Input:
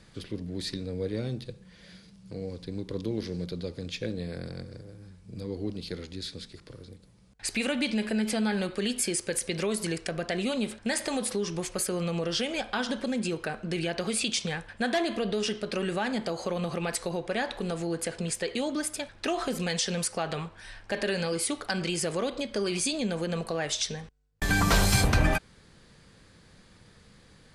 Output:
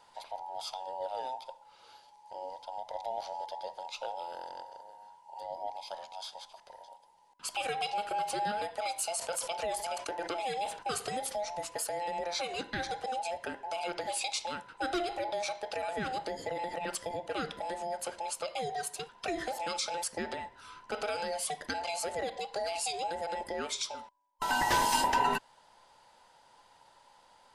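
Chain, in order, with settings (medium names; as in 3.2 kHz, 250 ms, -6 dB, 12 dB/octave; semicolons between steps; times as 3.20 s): every band turned upside down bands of 1 kHz; 9.12–10.83 s: decay stretcher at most 100 dB/s; trim -5.5 dB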